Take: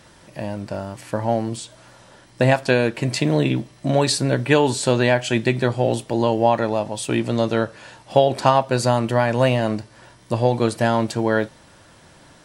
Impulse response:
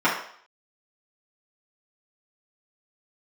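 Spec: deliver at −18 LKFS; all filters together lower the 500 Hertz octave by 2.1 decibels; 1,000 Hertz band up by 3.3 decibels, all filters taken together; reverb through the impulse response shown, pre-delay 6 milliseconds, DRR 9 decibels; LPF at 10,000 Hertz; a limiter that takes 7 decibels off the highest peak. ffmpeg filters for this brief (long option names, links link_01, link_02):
-filter_complex "[0:a]lowpass=10000,equalizer=frequency=500:width_type=o:gain=-4.5,equalizer=frequency=1000:width_type=o:gain=6,alimiter=limit=-7.5dB:level=0:latency=1,asplit=2[link_01][link_02];[1:a]atrim=start_sample=2205,adelay=6[link_03];[link_02][link_03]afir=irnorm=-1:irlink=0,volume=-27.5dB[link_04];[link_01][link_04]amix=inputs=2:normalize=0,volume=3.5dB"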